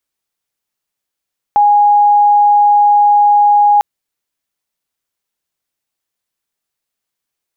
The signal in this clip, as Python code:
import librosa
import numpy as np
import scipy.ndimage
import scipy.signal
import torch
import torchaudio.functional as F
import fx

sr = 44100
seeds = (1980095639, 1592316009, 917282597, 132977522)

y = 10.0 ** (-5.5 / 20.0) * np.sin(2.0 * np.pi * (825.0 * (np.arange(round(2.25 * sr)) / sr)))